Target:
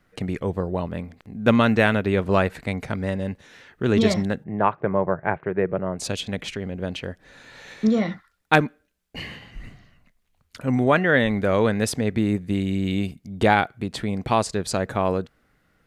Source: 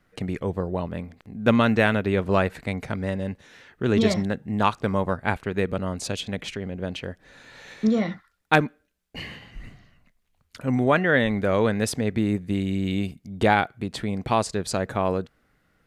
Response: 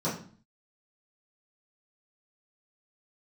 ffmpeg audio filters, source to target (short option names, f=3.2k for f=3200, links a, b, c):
-filter_complex "[0:a]asplit=3[a][b][c];[a]afade=t=out:st=4.43:d=0.02[d];[b]highpass=130,equalizer=f=160:t=q:w=4:g=5,equalizer=f=240:t=q:w=4:g=-10,equalizer=f=370:t=q:w=4:g=4,equalizer=f=620:t=q:w=4:g=4,equalizer=f=1.3k:t=q:w=4:g=-3,lowpass=f=2k:w=0.5412,lowpass=f=2k:w=1.3066,afade=t=in:st=4.43:d=0.02,afade=t=out:st=5.98:d=0.02[e];[c]afade=t=in:st=5.98:d=0.02[f];[d][e][f]amix=inputs=3:normalize=0,volume=1.5dB"